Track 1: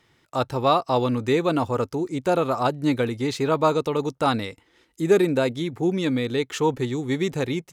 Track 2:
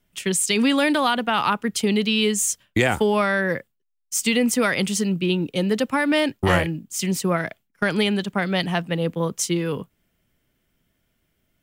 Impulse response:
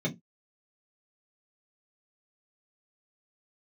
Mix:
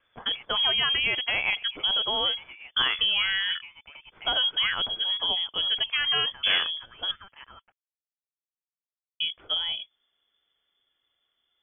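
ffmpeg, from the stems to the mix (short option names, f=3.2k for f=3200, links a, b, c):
-filter_complex "[0:a]highpass=1.1k,acompressor=threshold=-36dB:ratio=16,volume=-5.5dB[a];[1:a]volume=-5.5dB,asplit=3[b][c][d];[b]atrim=end=7.11,asetpts=PTS-STARTPTS,afade=t=out:st=7.106:d=0.004:c=hsin[e];[c]atrim=start=7.11:end=9.2,asetpts=PTS-STARTPTS,volume=0[f];[d]atrim=start=9.2,asetpts=PTS-STARTPTS,afade=t=in:d=0.004:c=hsin[g];[e][f][g]concat=n=3:v=0:a=1[h];[a][h]amix=inputs=2:normalize=0,lowpass=f=3k:t=q:w=0.5098,lowpass=f=3k:t=q:w=0.6013,lowpass=f=3k:t=q:w=0.9,lowpass=f=3k:t=q:w=2.563,afreqshift=-3500,lowshelf=f=130:g=10.5"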